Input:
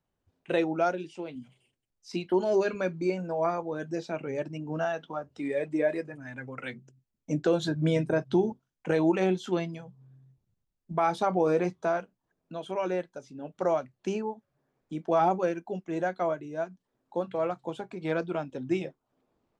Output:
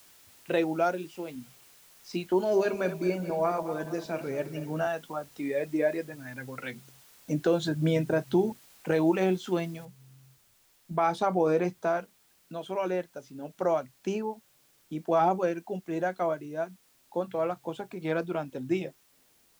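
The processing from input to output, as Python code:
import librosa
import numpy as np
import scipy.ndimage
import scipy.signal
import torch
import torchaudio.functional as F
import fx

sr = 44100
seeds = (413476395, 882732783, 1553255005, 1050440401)

y = fx.reverse_delay_fb(x, sr, ms=108, feedback_pct=65, wet_db=-11.5, at=(2.44, 4.87))
y = fx.noise_floor_step(y, sr, seeds[0], at_s=9.85, before_db=-57, after_db=-65, tilt_db=0.0)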